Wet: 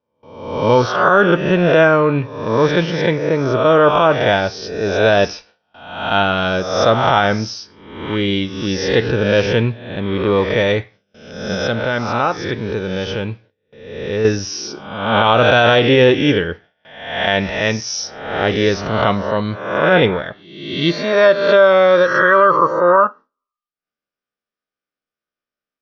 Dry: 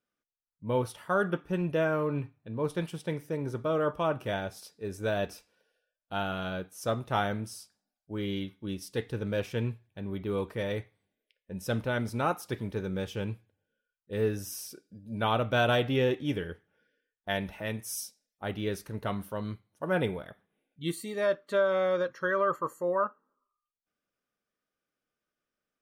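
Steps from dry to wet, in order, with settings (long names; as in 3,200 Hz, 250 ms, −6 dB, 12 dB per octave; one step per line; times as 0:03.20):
peak hold with a rise ahead of every peak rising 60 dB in 0.87 s
noise gate with hold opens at −51 dBFS
Butterworth low-pass 5,900 Hz 96 dB per octave
low-shelf EQ 410 Hz −4.5 dB
0:11.54–0:14.25: downward compressor 1.5 to 1, threshold −44 dBFS, peak gain reduction 8 dB
boost into a limiter +18.5 dB
level −1 dB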